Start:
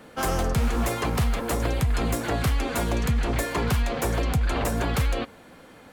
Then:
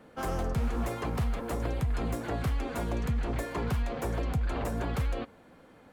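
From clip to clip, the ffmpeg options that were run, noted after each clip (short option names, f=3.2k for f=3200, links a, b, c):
-af "highshelf=f=2k:g=-8,volume=-6dB"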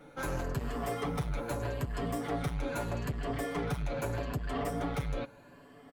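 -af "afftfilt=real='re*pow(10,9/40*sin(2*PI*(1.4*log(max(b,1)*sr/1024/100)/log(2)-(0.8)*(pts-256)/sr)))':imag='im*pow(10,9/40*sin(2*PI*(1.4*log(max(b,1)*sr/1024/100)/log(2)-(0.8)*(pts-256)/sr)))':win_size=1024:overlap=0.75,aeval=exprs='0.126*(cos(1*acos(clip(val(0)/0.126,-1,1)))-cos(1*PI/2))+0.0282*(cos(5*acos(clip(val(0)/0.126,-1,1)))-cos(5*PI/2))':c=same,aecho=1:1:7:0.71,volume=-8dB"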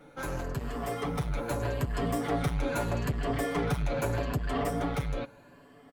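-af "dynaudnorm=f=290:g=9:m=4.5dB"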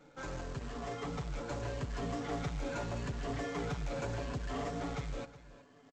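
-af "aresample=16000,acrusher=bits=3:mode=log:mix=0:aa=0.000001,aresample=44100,asoftclip=type=tanh:threshold=-23dB,aecho=1:1:368:0.141,volume=-6.5dB"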